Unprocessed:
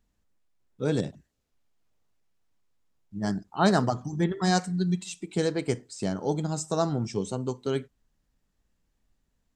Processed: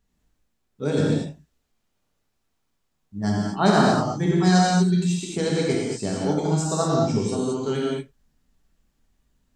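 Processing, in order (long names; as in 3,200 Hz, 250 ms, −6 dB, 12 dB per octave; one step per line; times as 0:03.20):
reverb whose tail is shaped and stops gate 260 ms flat, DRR −4.5 dB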